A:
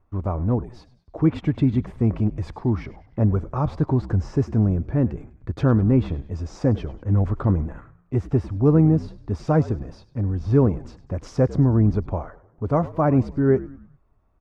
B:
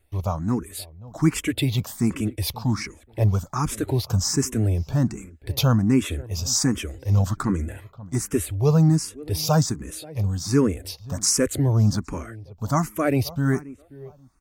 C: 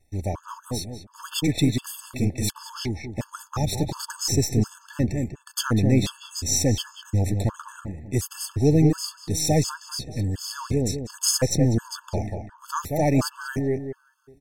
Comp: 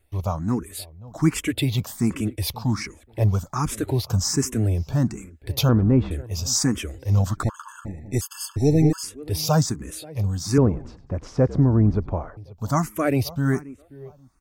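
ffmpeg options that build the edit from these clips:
-filter_complex "[0:a]asplit=2[a][b];[1:a]asplit=4[c][d][e][f];[c]atrim=end=5.692[g];[a]atrim=start=5.688:end=6.112[h];[d]atrim=start=6.108:end=7.432[i];[2:a]atrim=start=7.428:end=9.032[j];[e]atrim=start=9.028:end=10.582[k];[b]atrim=start=10.578:end=12.372[l];[f]atrim=start=12.368[m];[g][h]acrossfade=d=0.004:c1=hsin:c2=hsin[n];[n][i]acrossfade=d=0.004:c1=hsin:c2=hsin[o];[o][j]acrossfade=d=0.004:c1=hsin:c2=hsin[p];[p][k]acrossfade=d=0.004:c1=hsin:c2=hsin[q];[q][l]acrossfade=d=0.004:c1=hsin:c2=hsin[r];[r][m]acrossfade=d=0.004:c1=hsin:c2=hsin"

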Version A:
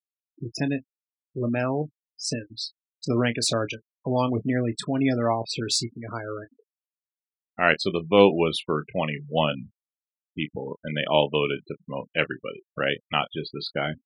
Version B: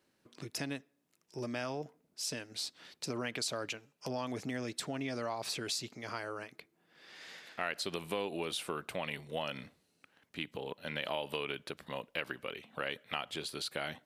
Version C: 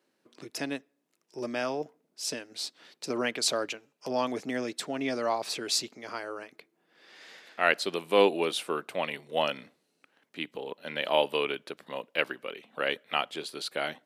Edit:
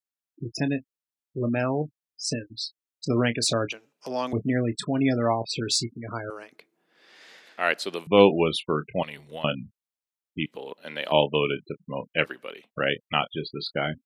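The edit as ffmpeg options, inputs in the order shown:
-filter_complex "[2:a]asplit=4[a][b][c][d];[0:a]asplit=6[e][f][g][h][i][j];[e]atrim=end=3.722[k];[a]atrim=start=3.718:end=4.332[l];[f]atrim=start=4.328:end=6.302[m];[b]atrim=start=6.298:end=8.072[n];[g]atrim=start=8.068:end=9.032[o];[1:a]atrim=start=9.028:end=9.442[p];[h]atrim=start=9.438:end=10.462[q];[c]atrim=start=10.458:end=11.122[r];[i]atrim=start=11.118:end=12.31[s];[d]atrim=start=12.21:end=12.71[t];[j]atrim=start=12.61[u];[k][l]acrossfade=d=0.004:c1=hsin:c2=hsin[v];[v][m]acrossfade=d=0.004:c1=hsin:c2=hsin[w];[w][n]acrossfade=d=0.004:c1=hsin:c2=hsin[x];[x][o]acrossfade=d=0.004:c1=hsin:c2=hsin[y];[y][p]acrossfade=d=0.004:c1=hsin:c2=hsin[z];[z][q]acrossfade=d=0.004:c1=hsin:c2=hsin[aa];[aa][r]acrossfade=d=0.004:c1=hsin:c2=hsin[ab];[ab][s]acrossfade=d=0.004:c1=hsin:c2=hsin[ac];[ac][t]acrossfade=d=0.1:c1=tri:c2=tri[ad];[ad][u]acrossfade=d=0.1:c1=tri:c2=tri"

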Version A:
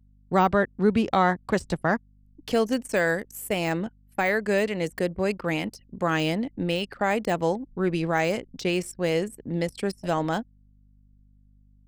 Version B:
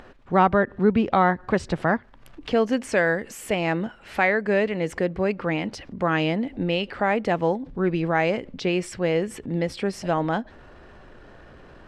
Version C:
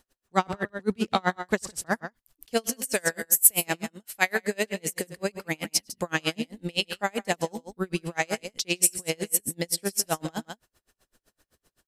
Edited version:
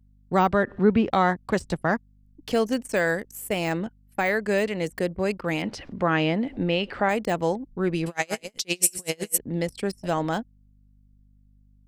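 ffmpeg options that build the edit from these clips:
-filter_complex "[1:a]asplit=2[a][b];[0:a]asplit=4[c][d][e][f];[c]atrim=end=0.642[g];[a]atrim=start=0.638:end=1.102[h];[d]atrim=start=1.098:end=5.622[i];[b]atrim=start=5.618:end=7.092[j];[e]atrim=start=7.088:end=8.062[k];[2:a]atrim=start=8.058:end=9.382[l];[f]atrim=start=9.378[m];[g][h]acrossfade=d=0.004:c1=hsin:c2=hsin[n];[n][i]acrossfade=d=0.004:c1=hsin:c2=hsin[o];[o][j]acrossfade=d=0.004:c1=hsin:c2=hsin[p];[p][k]acrossfade=d=0.004:c1=hsin:c2=hsin[q];[q][l]acrossfade=d=0.004:c1=hsin:c2=hsin[r];[r][m]acrossfade=d=0.004:c1=hsin:c2=hsin"

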